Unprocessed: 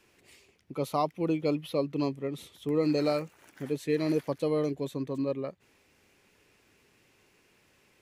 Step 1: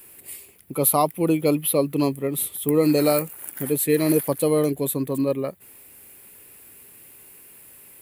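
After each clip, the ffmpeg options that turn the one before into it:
-af "aexciter=amount=11.5:drive=7.3:freq=8800,volume=2.51"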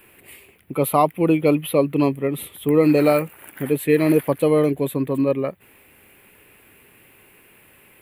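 -af "highshelf=f=3800:t=q:w=1.5:g=-11.5,volume=1.41"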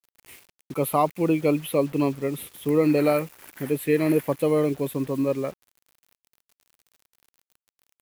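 -af "acrusher=bits=6:mix=0:aa=0.000001,volume=0.596"

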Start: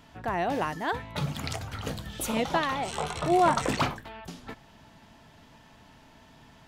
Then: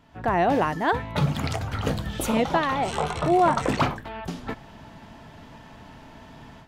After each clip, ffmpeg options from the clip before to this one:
-filter_complex "[0:a]asplit=2[s0][s1];[s1]alimiter=limit=0.0891:level=0:latency=1:release=376,volume=1.06[s2];[s0][s2]amix=inputs=2:normalize=0,highshelf=f=2700:g=-8,dynaudnorm=f=120:g=3:m=3.98,volume=0.376"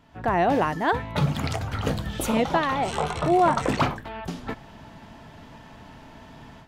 -af anull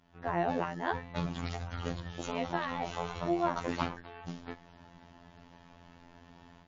-af "tremolo=f=180:d=0.261,afftfilt=real='hypot(re,im)*cos(PI*b)':imag='0':win_size=2048:overlap=0.75,volume=0.531" -ar 16000 -c:a libmp3lame -b:a 32k

